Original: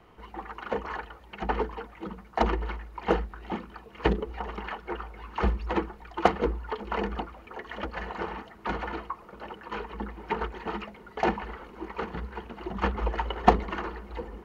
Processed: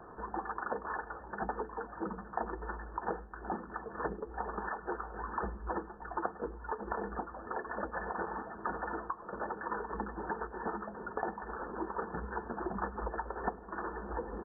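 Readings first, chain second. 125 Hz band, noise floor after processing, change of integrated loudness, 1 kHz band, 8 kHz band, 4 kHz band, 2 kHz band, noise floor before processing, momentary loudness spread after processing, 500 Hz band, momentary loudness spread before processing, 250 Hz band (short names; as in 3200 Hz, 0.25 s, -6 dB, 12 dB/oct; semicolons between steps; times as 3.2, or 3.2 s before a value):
-12.0 dB, -50 dBFS, -7.5 dB, -6.0 dB, n/a, under -40 dB, -5.5 dB, -50 dBFS, 3 LU, -7.5 dB, 13 LU, -8.5 dB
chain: low shelf 170 Hz -9.5 dB; compressor 10:1, threshold -41 dBFS, peak gain reduction 28 dB; brick-wall FIR low-pass 1800 Hz; feedback echo 0.1 s, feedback 32%, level -23 dB; gain +7.5 dB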